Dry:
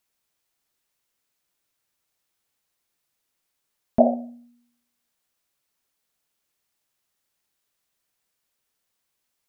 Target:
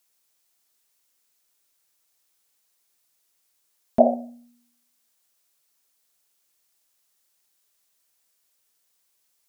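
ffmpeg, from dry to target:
ffmpeg -i in.wav -af "bass=frequency=250:gain=-6,treble=frequency=4000:gain=7,volume=1.5dB" out.wav

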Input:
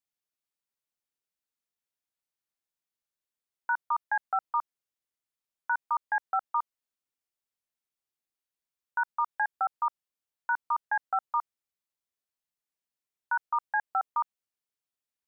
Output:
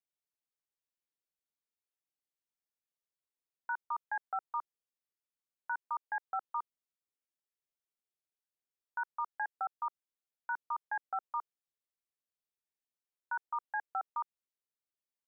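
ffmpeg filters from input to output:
ffmpeg -i in.wav -af "equalizer=frequency=420:width_type=o:width=0.97:gain=5,volume=-8.5dB" out.wav

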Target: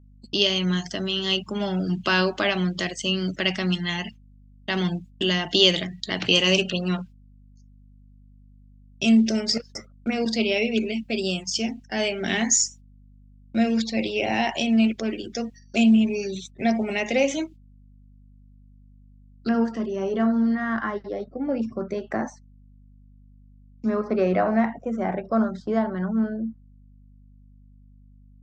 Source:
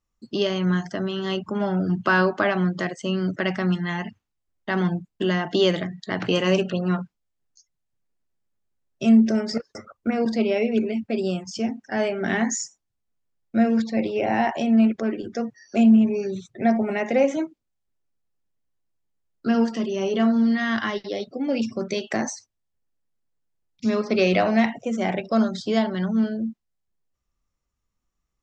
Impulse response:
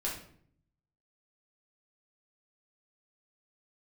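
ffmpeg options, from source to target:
-af "asetnsamples=nb_out_samples=441:pad=0,asendcmd='19.49 highshelf g -6.5;20.55 highshelf g -12.5',highshelf=frequency=2100:width_type=q:width=1.5:gain=10,agate=range=-24dB:threshold=-39dB:ratio=16:detection=peak,aeval=exprs='val(0)+0.00398*(sin(2*PI*50*n/s)+sin(2*PI*2*50*n/s)/2+sin(2*PI*3*50*n/s)/3+sin(2*PI*4*50*n/s)/4+sin(2*PI*5*50*n/s)/5)':channel_layout=same,volume=-2dB"

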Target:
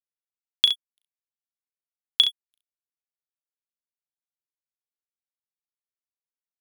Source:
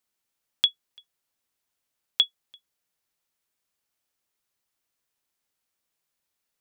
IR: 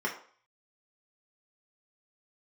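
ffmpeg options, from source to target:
-af "highshelf=frequency=3900:gain=8.5,aeval=exprs='sgn(val(0))*max(abs(val(0))-0.0158,0)':channel_layout=same,aecho=1:1:37|67:0.422|0.355"

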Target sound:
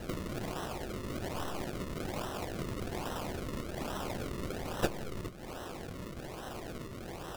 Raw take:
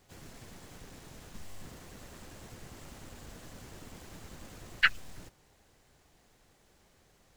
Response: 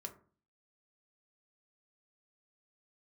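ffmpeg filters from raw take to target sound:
-filter_complex "[0:a]aexciter=amount=11.2:drive=9.7:freq=6200,acompressor=threshold=-41dB:ratio=4,highshelf=frequency=4600:gain=-9.5,acrusher=samples=38:mix=1:aa=0.000001:lfo=1:lforange=38:lforate=1.2,asplit=2[link_01][link_02];[1:a]atrim=start_sample=2205,asetrate=40131,aresample=44100[link_03];[link_02][link_03]afir=irnorm=-1:irlink=0,volume=-6.5dB[link_04];[link_01][link_04]amix=inputs=2:normalize=0,volume=10dB"

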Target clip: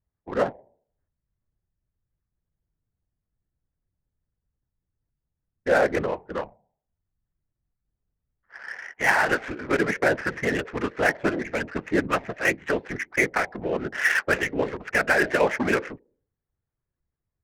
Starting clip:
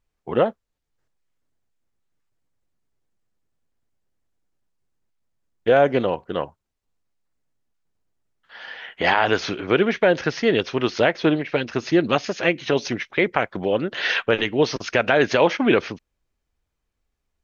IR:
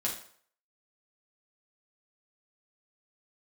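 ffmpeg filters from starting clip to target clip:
-af "lowpass=frequency=1900:width_type=q:width=2.8,bandreject=frequency=149.9:width_type=h:width=4,bandreject=frequency=299.8:width_type=h:width=4,bandreject=frequency=449.7:width_type=h:width=4,bandreject=frequency=599.6:width_type=h:width=4,bandreject=frequency=749.5:width_type=h:width=4,bandreject=frequency=899.4:width_type=h:width=4,afftfilt=real='hypot(re,im)*cos(2*PI*random(0))':imag='hypot(re,im)*sin(2*PI*random(1))':win_size=512:overlap=0.75,adynamicsmooth=sensitivity=4.5:basefreq=1100"

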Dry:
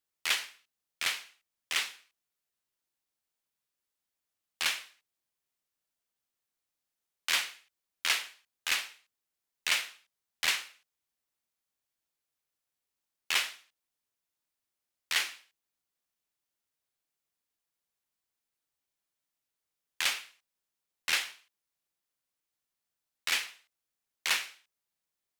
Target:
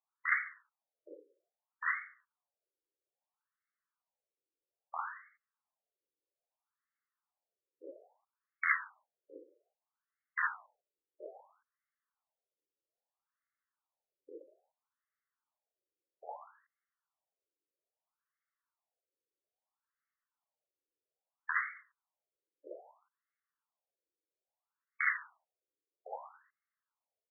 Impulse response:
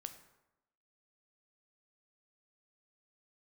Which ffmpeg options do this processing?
-af "atempo=0.93,afftfilt=real='re*between(b*sr/1024,390*pow(1600/390,0.5+0.5*sin(2*PI*0.61*pts/sr))/1.41,390*pow(1600/390,0.5+0.5*sin(2*PI*0.61*pts/sr))*1.41)':imag='im*between(b*sr/1024,390*pow(1600/390,0.5+0.5*sin(2*PI*0.61*pts/sr))/1.41,390*pow(1600/390,0.5+0.5*sin(2*PI*0.61*pts/sr))*1.41)':win_size=1024:overlap=0.75,volume=5dB"

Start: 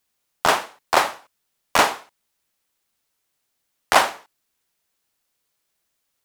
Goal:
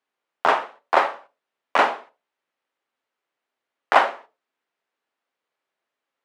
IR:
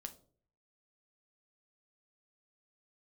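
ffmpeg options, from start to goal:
-filter_complex "[0:a]highpass=340,lowpass=8000,highshelf=frequency=3800:gain=-10.5,asplit=2[link_01][link_02];[1:a]atrim=start_sample=2205,atrim=end_sample=6174,lowpass=3500[link_03];[link_02][link_03]afir=irnorm=-1:irlink=0,volume=8dB[link_04];[link_01][link_04]amix=inputs=2:normalize=0,volume=-6.5dB"

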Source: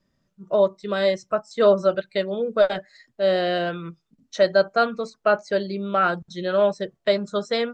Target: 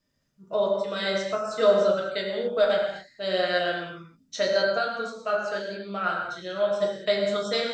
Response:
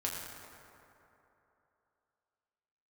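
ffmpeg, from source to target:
-filter_complex "[1:a]atrim=start_sample=2205,afade=type=out:start_time=0.32:duration=0.01,atrim=end_sample=14553[link_01];[0:a][link_01]afir=irnorm=-1:irlink=0,asplit=3[link_02][link_03][link_04];[link_02]afade=type=out:start_time=4.77:duration=0.02[link_05];[link_03]flanger=delay=8.5:depth=8.5:regen=-53:speed=1:shape=triangular,afade=type=in:start_time=4.77:duration=0.02,afade=type=out:start_time=6.8:duration=0.02[link_06];[link_04]afade=type=in:start_time=6.8:duration=0.02[link_07];[link_05][link_06][link_07]amix=inputs=3:normalize=0,highshelf=frequency=2400:gain=9,volume=-6.5dB"

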